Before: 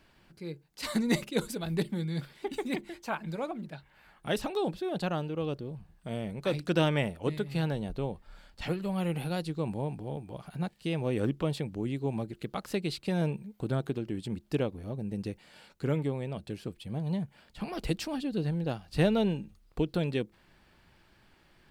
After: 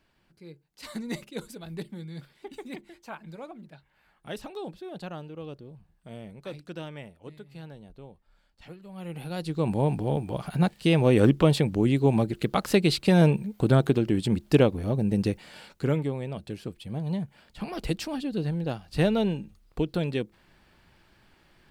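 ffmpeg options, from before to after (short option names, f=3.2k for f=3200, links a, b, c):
-af "volume=17dB,afade=t=out:st=6.25:d=0.58:silence=0.473151,afade=t=in:st=8.89:d=0.45:silence=0.266073,afade=t=in:st=9.34:d=0.6:silence=0.251189,afade=t=out:st=15.22:d=0.83:silence=0.375837"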